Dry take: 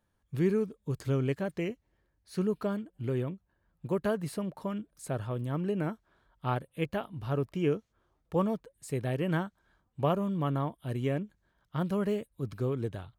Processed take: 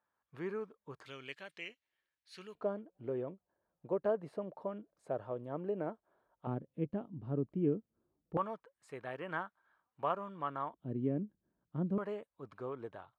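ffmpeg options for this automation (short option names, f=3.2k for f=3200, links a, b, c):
-af "asetnsamples=n=441:p=0,asendcmd='1.06 bandpass f 2900;2.55 bandpass f 600;6.47 bandpass f 250;8.37 bandpass f 1200;10.74 bandpass f 260;11.98 bandpass f 960',bandpass=f=1.1k:t=q:w=1.4:csg=0"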